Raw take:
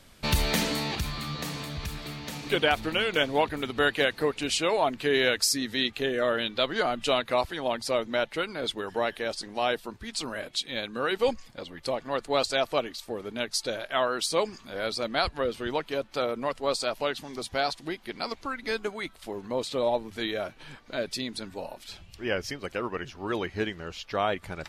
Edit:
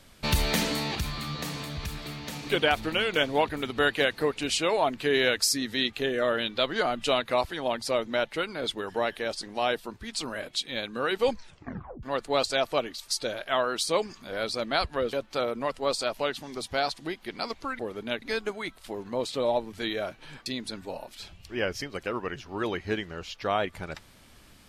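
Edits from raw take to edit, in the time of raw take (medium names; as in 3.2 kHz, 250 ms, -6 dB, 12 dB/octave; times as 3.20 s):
11.31 s: tape stop 0.72 s
13.08–13.51 s: move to 18.60 s
15.56–15.94 s: delete
20.84–21.15 s: delete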